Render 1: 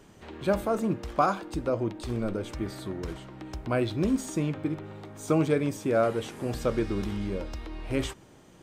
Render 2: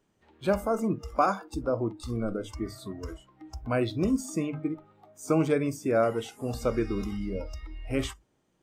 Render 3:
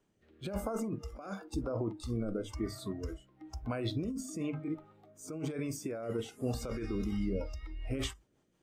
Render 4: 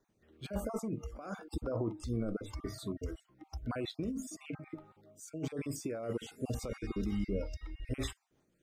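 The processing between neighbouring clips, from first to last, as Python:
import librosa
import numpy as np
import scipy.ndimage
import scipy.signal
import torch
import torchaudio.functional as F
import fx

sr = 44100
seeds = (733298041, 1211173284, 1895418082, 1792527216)

y1 = fx.hum_notches(x, sr, base_hz=50, count=3)
y1 = fx.noise_reduce_blind(y1, sr, reduce_db=18)
y2 = fx.over_compress(y1, sr, threshold_db=-30.0, ratio=-1.0)
y2 = fx.rotary_switch(y2, sr, hz=1.0, then_hz=5.5, switch_at_s=6.71)
y2 = y2 * 10.0 ** (-3.0 / 20.0)
y3 = fx.spec_dropout(y2, sr, seeds[0], share_pct=26)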